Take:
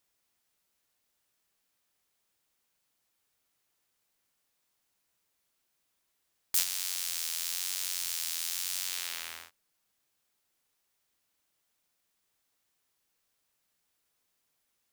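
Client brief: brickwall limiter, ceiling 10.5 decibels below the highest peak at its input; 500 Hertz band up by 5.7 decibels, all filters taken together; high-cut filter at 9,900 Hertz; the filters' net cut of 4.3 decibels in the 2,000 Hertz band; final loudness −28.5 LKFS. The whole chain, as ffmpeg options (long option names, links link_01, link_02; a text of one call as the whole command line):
ffmpeg -i in.wav -af "lowpass=9900,equalizer=frequency=500:width_type=o:gain=7.5,equalizer=frequency=2000:width_type=o:gain=-6,volume=9dB,alimiter=limit=-11dB:level=0:latency=1" out.wav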